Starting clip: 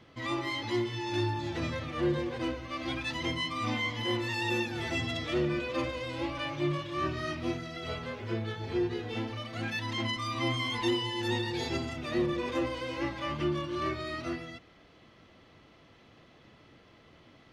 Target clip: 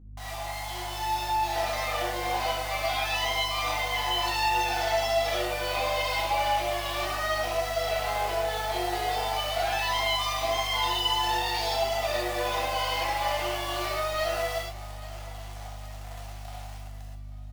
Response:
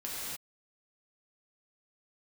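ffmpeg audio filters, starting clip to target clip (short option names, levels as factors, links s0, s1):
-filter_complex "[0:a]equalizer=f=4800:t=o:w=1.3:g=8,aecho=1:1:4.7:0.56,asplit=2[s0][s1];[s1]acompressor=threshold=0.00708:ratio=6,volume=0.891[s2];[s0][s2]amix=inputs=2:normalize=0,alimiter=limit=0.0631:level=0:latency=1:release=88,dynaudnorm=f=460:g=5:m=4.47,acrusher=bits=4:mix=0:aa=0.000001,highpass=f=720:t=q:w=8,asoftclip=type=tanh:threshold=0.224,aeval=exprs='val(0)+0.0178*(sin(2*PI*50*n/s)+sin(2*PI*2*50*n/s)/2+sin(2*PI*3*50*n/s)/3+sin(2*PI*4*50*n/s)/4+sin(2*PI*5*50*n/s)/5)':c=same,aecho=1:1:839|1678|2517|3356:0.112|0.0583|0.0303|0.0158[s3];[1:a]atrim=start_sample=2205,afade=t=out:st=0.23:d=0.01,atrim=end_sample=10584,asetrate=57330,aresample=44100[s4];[s3][s4]afir=irnorm=-1:irlink=0,volume=0.422"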